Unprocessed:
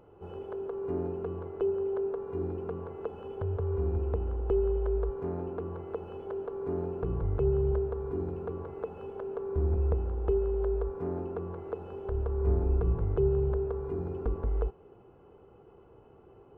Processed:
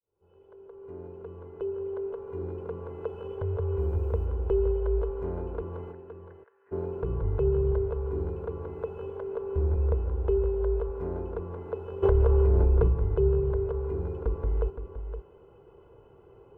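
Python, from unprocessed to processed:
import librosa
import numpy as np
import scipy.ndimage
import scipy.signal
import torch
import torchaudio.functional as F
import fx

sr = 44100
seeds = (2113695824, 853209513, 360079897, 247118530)

p1 = fx.fade_in_head(x, sr, length_s=3.09)
p2 = p1 + 0.38 * np.pad(p1, (int(2.0 * sr / 1000.0), 0))[:len(p1)]
p3 = fx.quant_dither(p2, sr, seeds[0], bits=12, dither='none', at=(3.78, 4.26))
p4 = fx.bandpass_q(p3, sr, hz=1800.0, q=8.8, at=(5.91, 6.71), fade=0.02)
p5 = p4 + fx.echo_single(p4, sr, ms=517, db=-9.5, dry=0)
y = fx.env_flatten(p5, sr, amount_pct=100, at=(12.02, 12.87), fade=0.02)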